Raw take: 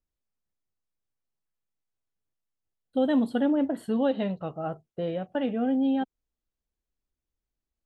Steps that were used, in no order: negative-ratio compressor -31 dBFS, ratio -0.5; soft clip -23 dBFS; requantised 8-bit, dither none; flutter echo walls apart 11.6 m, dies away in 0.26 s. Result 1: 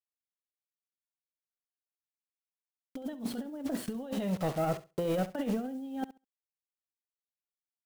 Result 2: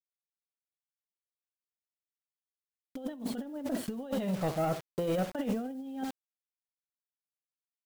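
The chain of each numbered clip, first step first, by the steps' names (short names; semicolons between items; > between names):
requantised > negative-ratio compressor > soft clip > flutter echo; flutter echo > requantised > negative-ratio compressor > soft clip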